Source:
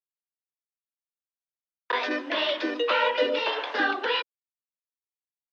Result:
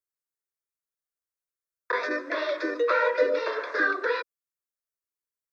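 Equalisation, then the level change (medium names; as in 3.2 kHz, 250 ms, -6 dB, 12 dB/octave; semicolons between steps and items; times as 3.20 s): static phaser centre 810 Hz, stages 6; +2.5 dB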